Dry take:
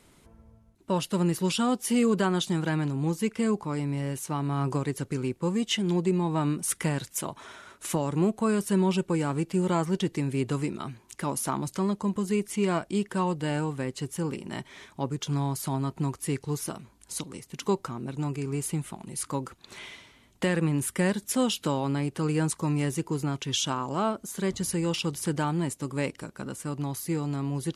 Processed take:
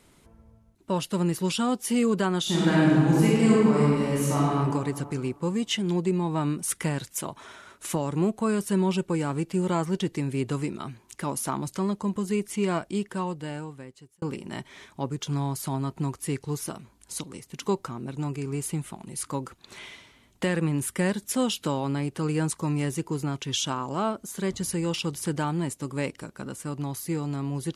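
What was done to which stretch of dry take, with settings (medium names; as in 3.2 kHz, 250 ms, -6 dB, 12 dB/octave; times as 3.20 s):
2.41–4.48 s: reverb throw, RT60 1.9 s, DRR -7 dB
12.82–14.22 s: fade out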